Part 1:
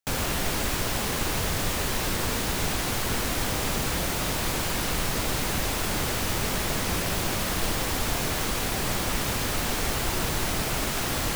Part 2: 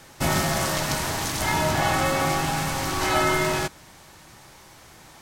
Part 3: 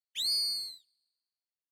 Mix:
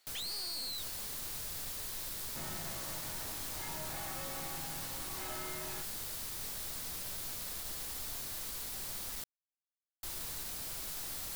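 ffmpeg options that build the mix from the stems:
ffmpeg -i stem1.wav -i stem2.wav -i stem3.wav -filter_complex "[0:a]equalizer=frequency=260:width=0.4:gain=-4,aexciter=amount=2.8:drive=4.5:freq=3700,volume=-13.5dB,asplit=3[link_01][link_02][link_03];[link_01]atrim=end=9.24,asetpts=PTS-STARTPTS,afade=type=out:start_time=9.236:duration=0.004:curve=hsin[link_04];[link_02]atrim=start=9.24:end=10.03,asetpts=PTS-STARTPTS,volume=0[link_05];[link_03]atrim=start=10.03,asetpts=PTS-STARTPTS,afade=type=in:duration=0.004:curve=hsin[link_06];[link_04][link_05][link_06]concat=n=3:v=0:a=1[link_07];[1:a]adelay=2150,volume=-13.5dB[link_08];[2:a]asplit=2[link_09][link_10];[link_10]highpass=frequency=720:poles=1,volume=34dB,asoftclip=type=tanh:threshold=-21.5dB[link_11];[link_09][link_11]amix=inputs=2:normalize=0,lowpass=frequency=4700:poles=1,volume=-6dB,volume=2.5dB[link_12];[link_07][link_08][link_12]amix=inputs=3:normalize=0,aeval=exprs='(tanh(89.1*val(0)+0.3)-tanh(0.3))/89.1':channel_layout=same" out.wav

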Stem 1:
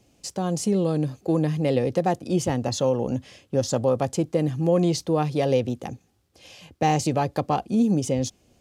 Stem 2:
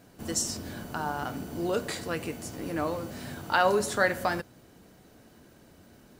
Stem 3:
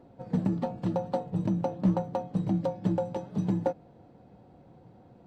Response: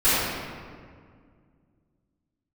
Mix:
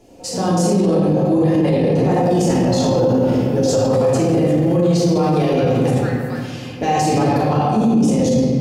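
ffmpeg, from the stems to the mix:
-filter_complex "[0:a]alimiter=limit=-14dB:level=0:latency=1,volume=1dB,asplit=2[link_01][link_02];[link_02]volume=-9dB[link_03];[1:a]highpass=1200,alimiter=limit=-19.5dB:level=0:latency=1:release=476,adelay=2050,volume=-4dB,asplit=2[link_04][link_05];[link_05]volume=-18dB[link_06];[2:a]bandpass=frequency=490:width_type=q:width=1:csg=0,volume=1dB,asplit=2[link_07][link_08];[link_08]volume=-9dB[link_09];[3:a]atrim=start_sample=2205[link_10];[link_03][link_06][link_09]amix=inputs=3:normalize=0[link_11];[link_11][link_10]afir=irnorm=-1:irlink=0[link_12];[link_01][link_04][link_07][link_12]amix=inputs=4:normalize=0,alimiter=limit=-8.5dB:level=0:latency=1:release=18"

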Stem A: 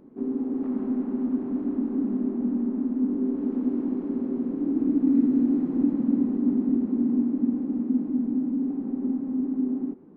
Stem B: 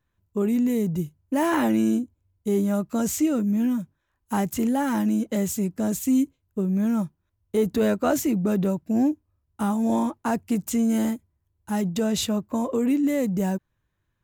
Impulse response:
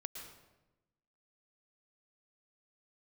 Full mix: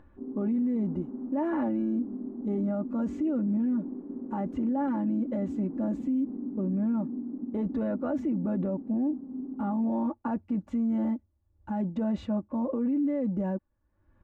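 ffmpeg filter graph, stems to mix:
-filter_complex "[0:a]agate=range=-33dB:threshold=-26dB:ratio=3:detection=peak,acompressor=threshold=-23dB:ratio=6,volume=-8.5dB[link_01];[1:a]aecho=1:1:3.5:0.71,volume=-3dB[link_02];[link_01][link_02]amix=inputs=2:normalize=0,lowpass=1100,acompressor=mode=upward:threshold=-39dB:ratio=2.5,alimiter=limit=-22.5dB:level=0:latency=1:release=25"

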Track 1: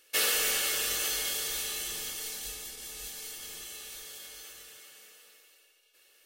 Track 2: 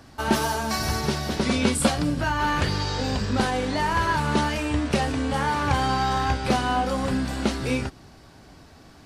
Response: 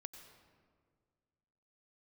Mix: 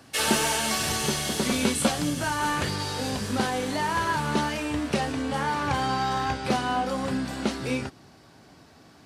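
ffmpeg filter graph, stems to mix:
-filter_complex "[0:a]lowpass=frequency=11000:width=0.5412,lowpass=frequency=11000:width=1.3066,volume=1.5dB[link_01];[1:a]highpass=110,volume=-2.5dB[link_02];[link_01][link_02]amix=inputs=2:normalize=0"

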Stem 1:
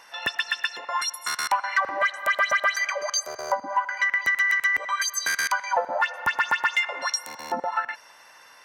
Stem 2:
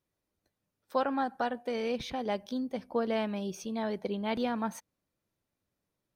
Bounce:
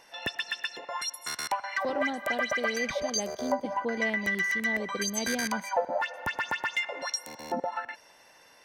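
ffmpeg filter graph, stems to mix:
ffmpeg -i stem1.wav -i stem2.wav -filter_complex "[0:a]tiltshelf=frequency=1100:gain=4,volume=-1dB[link_01];[1:a]adelay=900,volume=-0.5dB[link_02];[link_01][link_02]amix=inputs=2:normalize=0,equalizer=frequency=1200:width=1.3:gain=-10" out.wav

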